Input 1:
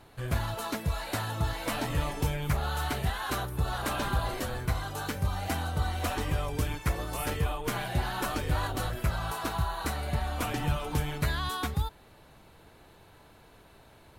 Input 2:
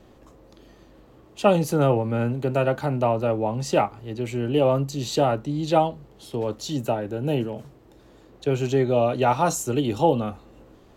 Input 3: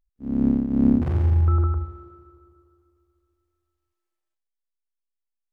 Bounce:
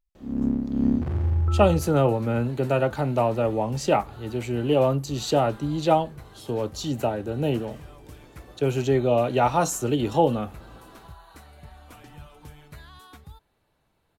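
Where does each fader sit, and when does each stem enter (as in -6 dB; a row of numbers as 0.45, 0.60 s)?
-15.5, -0.5, -4.0 dB; 1.50, 0.15, 0.00 s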